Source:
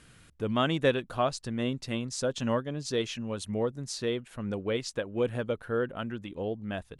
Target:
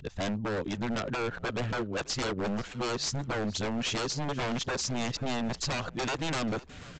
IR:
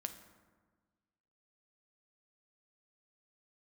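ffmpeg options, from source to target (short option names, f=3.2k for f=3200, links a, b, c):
-filter_complex "[0:a]areverse,acompressor=threshold=-32dB:ratio=4,aresample=16000,aeval=exprs='0.0178*(abs(mod(val(0)/0.0178+3,4)-2)-1)':c=same,aresample=44100,asplit=4[a][b][c][d];[b]adelay=486,afreqshift=-62,volume=-20dB[e];[c]adelay=972,afreqshift=-124,volume=-29.9dB[f];[d]adelay=1458,afreqshift=-186,volume=-39.8dB[g];[a][e][f][g]amix=inputs=4:normalize=0,volume=9dB"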